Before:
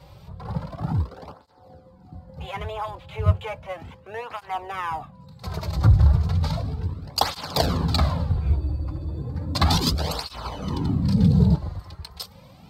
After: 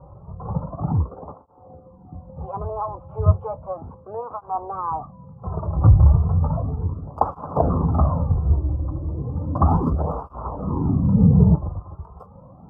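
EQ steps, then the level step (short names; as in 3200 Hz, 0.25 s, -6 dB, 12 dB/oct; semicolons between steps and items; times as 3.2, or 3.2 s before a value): elliptic low-pass 1200 Hz, stop band 40 dB; +4.0 dB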